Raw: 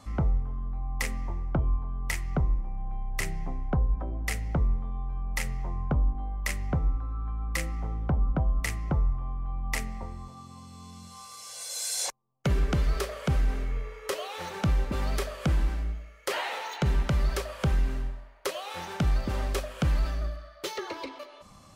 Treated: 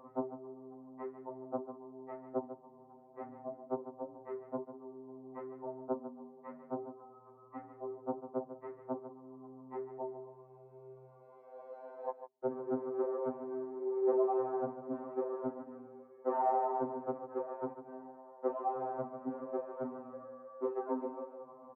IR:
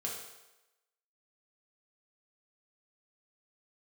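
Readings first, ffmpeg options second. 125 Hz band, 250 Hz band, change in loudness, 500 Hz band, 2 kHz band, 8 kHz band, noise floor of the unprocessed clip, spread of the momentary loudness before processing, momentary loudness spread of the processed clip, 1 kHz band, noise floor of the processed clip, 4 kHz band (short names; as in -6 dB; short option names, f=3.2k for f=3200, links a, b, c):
-29.5 dB, -6.0 dB, -8.5 dB, +2.0 dB, under -20 dB, under -40 dB, -50 dBFS, 10 LU, 18 LU, -1.0 dB, -59 dBFS, under -40 dB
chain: -filter_complex "[0:a]acompressor=threshold=-33dB:ratio=2,afreqshift=-45,volume=28dB,asoftclip=hard,volume=-28dB,asuperpass=centerf=470:order=8:qfactor=0.62,asplit=2[a][b];[b]aecho=0:1:147:0.282[c];[a][c]amix=inputs=2:normalize=0,afftfilt=real='re*2.45*eq(mod(b,6),0)':imag='im*2.45*eq(mod(b,6),0)':win_size=2048:overlap=0.75,volume=8.5dB"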